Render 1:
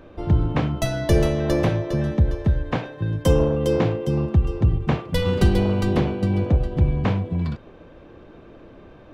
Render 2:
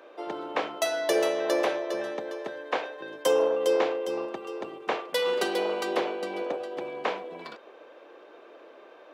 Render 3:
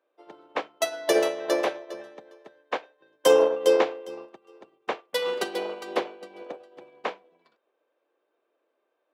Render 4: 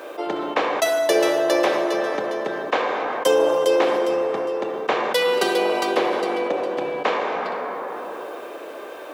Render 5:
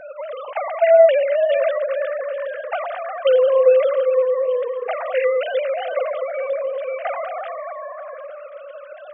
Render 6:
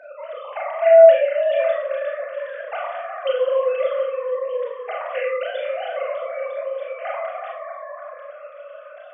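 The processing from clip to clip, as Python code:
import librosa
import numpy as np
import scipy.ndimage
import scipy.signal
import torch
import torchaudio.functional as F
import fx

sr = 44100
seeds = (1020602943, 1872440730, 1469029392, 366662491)

y1 = scipy.signal.sosfilt(scipy.signal.butter(4, 420.0, 'highpass', fs=sr, output='sos'), x)
y2 = fx.upward_expand(y1, sr, threshold_db=-42.0, expansion=2.5)
y2 = y2 * 10.0 ** (6.5 / 20.0)
y3 = fx.rev_plate(y2, sr, seeds[0], rt60_s=1.9, hf_ratio=0.55, predelay_ms=0, drr_db=8.0)
y3 = fx.env_flatten(y3, sr, amount_pct=70)
y4 = fx.sine_speech(y3, sr)
y4 = fx.echo_stepped(y4, sr, ms=309, hz=190.0, octaves=1.4, feedback_pct=70, wet_db=-10.5)
y4 = y4 * 10.0 ** (2.0 / 20.0)
y5 = scipy.signal.sosfilt(scipy.signal.butter(2, 500.0, 'highpass', fs=sr, output='sos'), y4)
y5 = fx.rev_schroeder(y5, sr, rt60_s=0.36, comb_ms=26, drr_db=-1.0)
y5 = y5 * 10.0 ** (-5.0 / 20.0)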